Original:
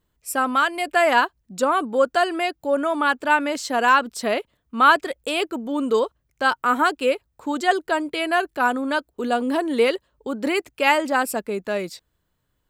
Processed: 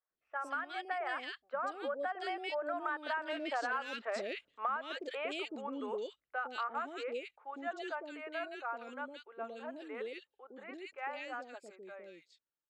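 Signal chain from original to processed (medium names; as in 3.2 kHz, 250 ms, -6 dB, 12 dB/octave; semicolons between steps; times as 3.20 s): Doppler pass-by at 3.69 s, 18 m/s, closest 4.6 m; low-pass 7.6 kHz 24 dB/octave; in parallel at -3 dB: saturation -20 dBFS, distortion -7 dB; on the sum: bass shelf 180 Hz -11 dB; band-stop 1 kHz, Q 9.2; three bands offset in time mids, lows, highs 110/170 ms, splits 520/2200 Hz; compression 12:1, threshold -39 dBFS, peak gain reduction 25.5 dB; tone controls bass -12 dB, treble -11 dB; trim +6 dB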